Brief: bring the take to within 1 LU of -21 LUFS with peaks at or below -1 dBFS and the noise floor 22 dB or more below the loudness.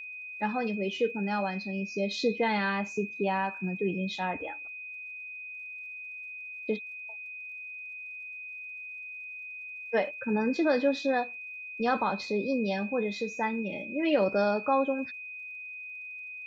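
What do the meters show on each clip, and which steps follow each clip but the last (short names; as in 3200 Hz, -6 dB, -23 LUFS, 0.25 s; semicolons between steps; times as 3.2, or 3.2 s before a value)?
ticks 39/s; steady tone 2500 Hz; tone level -39 dBFS; loudness -31.5 LUFS; peak -14.0 dBFS; loudness target -21.0 LUFS
-> de-click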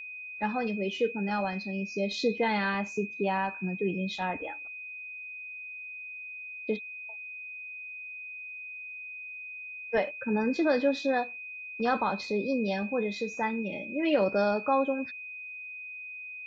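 ticks 0.061/s; steady tone 2500 Hz; tone level -39 dBFS
-> notch 2500 Hz, Q 30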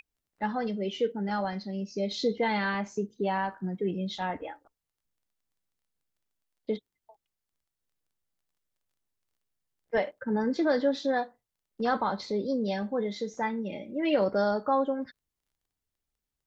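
steady tone none; loudness -30.5 LUFS; peak -14.0 dBFS; loudness target -21.0 LUFS
-> gain +9.5 dB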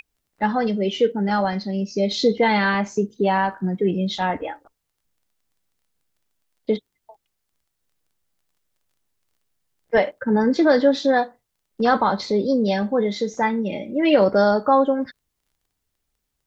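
loudness -21.0 LUFS; peak -4.5 dBFS; noise floor -78 dBFS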